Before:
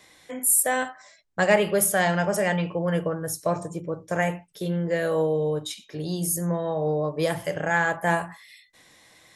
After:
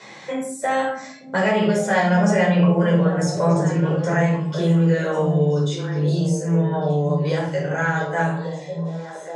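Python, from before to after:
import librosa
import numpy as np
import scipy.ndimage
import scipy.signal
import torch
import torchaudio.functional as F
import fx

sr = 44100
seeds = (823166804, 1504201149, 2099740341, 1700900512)

p1 = fx.doppler_pass(x, sr, speed_mps=12, closest_m=8.8, pass_at_s=2.66)
p2 = fx.over_compress(p1, sr, threshold_db=-37.0, ratio=-1.0)
p3 = p1 + (p2 * librosa.db_to_amplitude(3.0))
p4 = scipy.signal.sosfilt(scipy.signal.ellip(3, 1.0, 40, [140.0, 6900.0], 'bandpass', fs=sr, output='sos'), p3)
p5 = p4 + fx.echo_stepped(p4, sr, ms=572, hz=180.0, octaves=1.4, feedback_pct=70, wet_db=-6.0, dry=0)
p6 = fx.room_shoebox(p5, sr, seeds[0], volume_m3=410.0, walls='furnished', distance_m=4.8)
p7 = fx.band_squash(p6, sr, depth_pct=40)
y = p7 * librosa.db_to_amplitude(-2.5)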